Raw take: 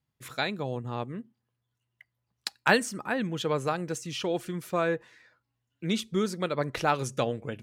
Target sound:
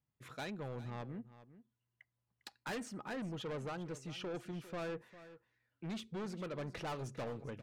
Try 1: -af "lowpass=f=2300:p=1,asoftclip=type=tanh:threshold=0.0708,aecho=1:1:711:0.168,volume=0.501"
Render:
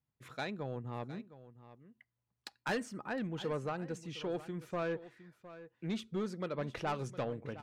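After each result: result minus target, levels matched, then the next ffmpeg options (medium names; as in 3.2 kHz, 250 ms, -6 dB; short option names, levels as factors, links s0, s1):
echo 309 ms late; saturation: distortion -6 dB
-af "lowpass=f=2300:p=1,asoftclip=type=tanh:threshold=0.0708,aecho=1:1:402:0.168,volume=0.501"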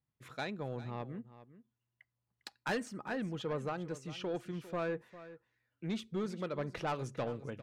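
saturation: distortion -6 dB
-af "lowpass=f=2300:p=1,asoftclip=type=tanh:threshold=0.0251,aecho=1:1:402:0.168,volume=0.501"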